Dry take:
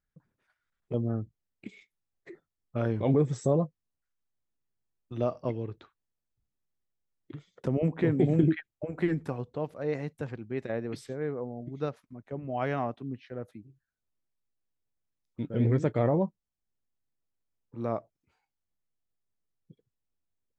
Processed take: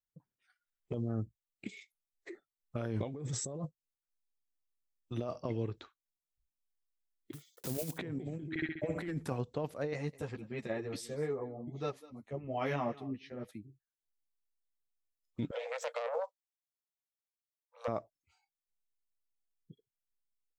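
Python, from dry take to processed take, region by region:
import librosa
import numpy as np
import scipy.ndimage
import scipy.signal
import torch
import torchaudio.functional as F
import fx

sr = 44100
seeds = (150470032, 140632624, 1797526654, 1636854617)

y = fx.chain(x, sr, fx.block_float(bits=5),
    fx.high_shelf(hz=5000.0, db=10.0),
    fx.upward_expand(threshold_db=-37.0, expansion=1.5), at=(7.33, 7.99))
y = fx.chain(y, sr, fx.peak_eq(hz=2100.0, db=3.0, octaves=0.24),
    fx.room_flutter(wall_m=11.3, rt60_s=0.78), at=(8.49, 9.08))
y = fx.chain(y, sr, fx.notch(hz=1500.0, q=9.8),
    fx.echo_single(ms=200, db=-19.0),
    fx.ensemble(), at=(9.93, 13.49))
y = fx.chain(y, sr, fx.self_delay(depth_ms=0.18),
    fx.cheby1_highpass(hz=470.0, order=10), at=(15.51, 17.88))
y = fx.noise_reduce_blind(y, sr, reduce_db=16)
y = fx.high_shelf(y, sr, hz=3800.0, db=11.5)
y = fx.over_compress(y, sr, threshold_db=-32.0, ratio=-1.0)
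y = y * 10.0 ** (-4.0 / 20.0)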